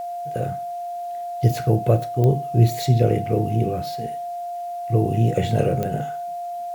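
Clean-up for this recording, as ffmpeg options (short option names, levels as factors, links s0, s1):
-af "adeclick=t=4,bandreject=f=700:w=30,agate=range=0.0891:threshold=0.0794"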